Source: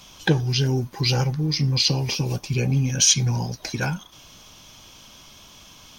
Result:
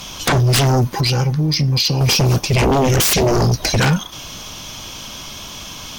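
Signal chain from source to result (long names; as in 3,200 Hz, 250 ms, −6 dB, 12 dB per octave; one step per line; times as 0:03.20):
0:00.84–0:02.01: downward compressor 4 to 1, threshold −29 dBFS, peak gain reduction 11 dB
0:02.62–0:03.80: low-shelf EQ 170 Hz +8 dB
sine wavefolder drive 19 dB, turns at −3 dBFS
level −8 dB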